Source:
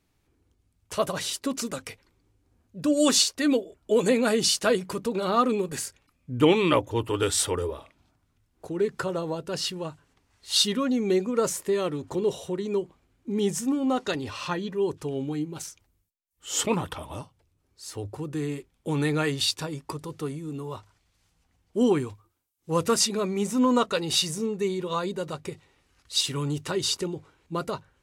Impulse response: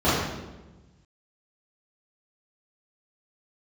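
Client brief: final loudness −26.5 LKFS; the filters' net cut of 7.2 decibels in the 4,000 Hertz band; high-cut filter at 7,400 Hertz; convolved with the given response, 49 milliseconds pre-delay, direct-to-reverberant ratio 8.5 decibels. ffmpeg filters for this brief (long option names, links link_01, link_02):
-filter_complex "[0:a]lowpass=7400,equalizer=frequency=4000:width_type=o:gain=-8.5,asplit=2[link_01][link_02];[1:a]atrim=start_sample=2205,adelay=49[link_03];[link_02][link_03]afir=irnorm=-1:irlink=0,volume=-28.5dB[link_04];[link_01][link_04]amix=inputs=2:normalize=0"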